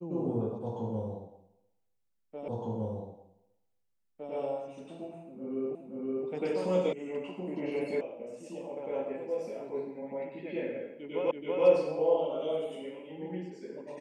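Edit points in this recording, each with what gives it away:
2.48 repeat of the last 1.86 s
5.75 repeat of the last 0.52 s
6.93 sound cut off
8.01 sound cut off
11.31 repeat of the last 0.33 s

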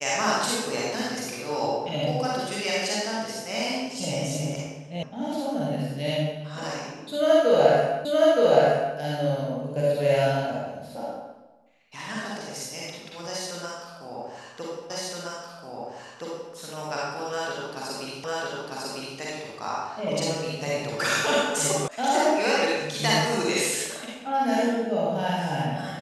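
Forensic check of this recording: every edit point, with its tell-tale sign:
5.03 sound cut off
8.05 repeat of the last 0.92 s
14.9 repeat of the last 1.62 s
18.24 repeat of the last 0.95 s
21.88 sound cut off

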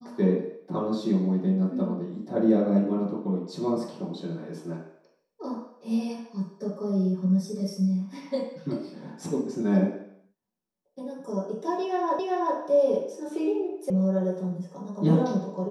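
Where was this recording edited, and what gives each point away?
12.19 repeat of the last 0.38 s
13.9 sound cut off

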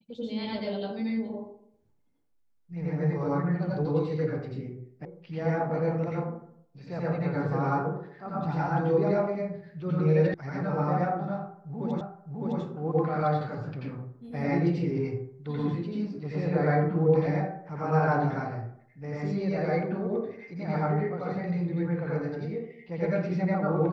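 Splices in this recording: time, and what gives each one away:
5.05 sound cut off
10.34 sound cut off
12.01 repeat of the last 0.61 s

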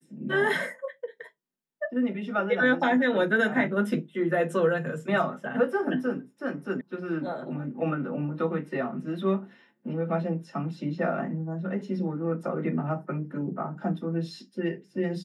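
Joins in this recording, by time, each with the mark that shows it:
6.81 sound cut off

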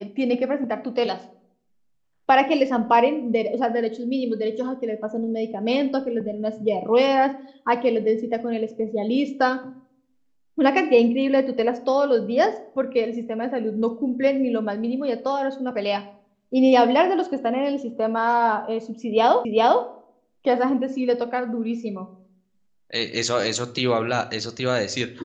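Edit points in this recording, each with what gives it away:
19.45 repeat of the last 0.4 s

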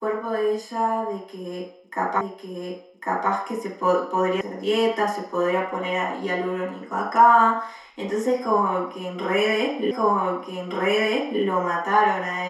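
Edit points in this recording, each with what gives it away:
2.21 repeat of the last 1.1 s
4.41 sound cut off
9.91 repeat of the last 1.52 s

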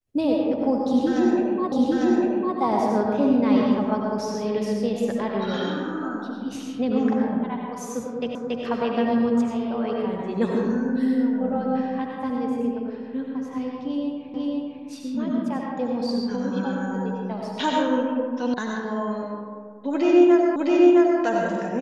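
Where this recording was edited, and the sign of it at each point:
1.72 repeat of the last 0.85 s
8.35 repeat of the last 0.28 s
14.34 repeat of the last 0.5 s
18.54 sound cut off
20.56 repeat of the last 0.66 s

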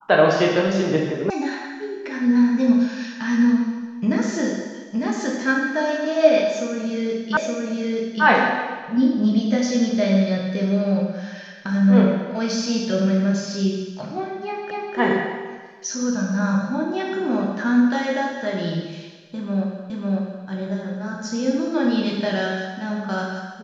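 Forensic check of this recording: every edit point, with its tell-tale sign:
1.3 sound cut off
7.37 repeat of the last 0.87 s
14.71 repeat of the last 0.25 s
19.9 repeat of the last 0.55 s

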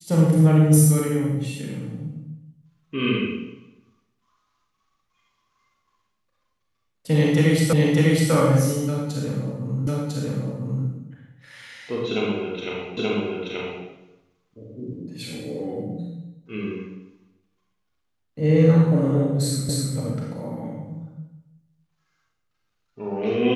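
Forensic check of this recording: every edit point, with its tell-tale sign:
7.73 repeat of the last 0.6 s
9.87 repeat of the last 1 s
12.97 repeat of the last 0.88 s
19.69 repeat of the last 0.26 s

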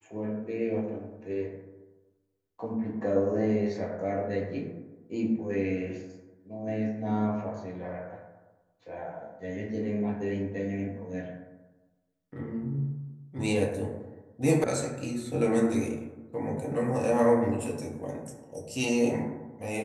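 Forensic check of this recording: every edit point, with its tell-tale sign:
14.64 sound cut off

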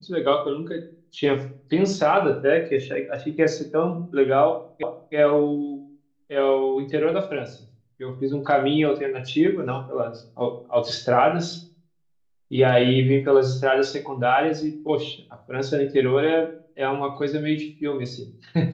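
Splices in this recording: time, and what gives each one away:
4.83 repeat of the last 0.32 s

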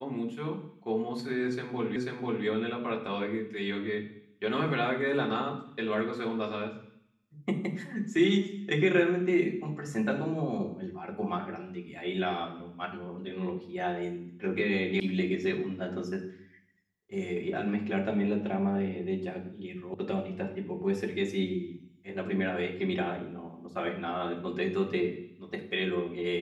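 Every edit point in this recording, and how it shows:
1.96 repeat of the last 0.49 s
15 sound cut off
19.94 sound cut off

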